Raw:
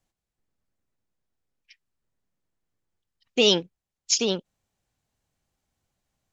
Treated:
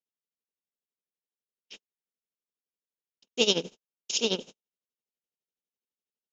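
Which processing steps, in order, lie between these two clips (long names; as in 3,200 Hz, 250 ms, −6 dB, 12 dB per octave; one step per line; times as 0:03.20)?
compressor on every frequency bin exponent 0.4
noise gate −33 dBFS, range −54 dB
amplitude tremolo 12 Hz, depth 84%
level −4.5 dB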